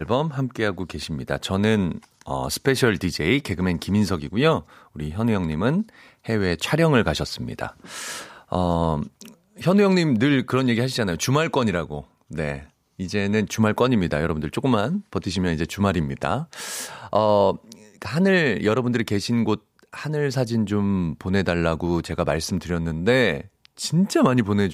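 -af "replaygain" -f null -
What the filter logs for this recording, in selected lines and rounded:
track_gain = +2.6 dB
track_peak = 0.408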